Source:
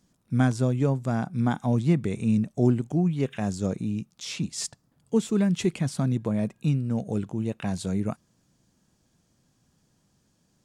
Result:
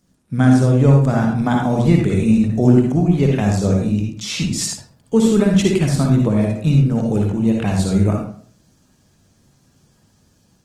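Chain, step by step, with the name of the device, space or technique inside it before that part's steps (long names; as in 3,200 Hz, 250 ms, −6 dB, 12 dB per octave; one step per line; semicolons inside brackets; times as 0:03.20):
mains-hum notches 60/120/180/240/300/360 Hz
speakerphone in a meeting room (convolution reverb RT60 0.50 s, pre-delay 51 ms, DRR 0.5 dB; automatic gain control gain up to 3.5 dB; level +4.5 dB; Opus 20 kbit/s 48,000 Hz)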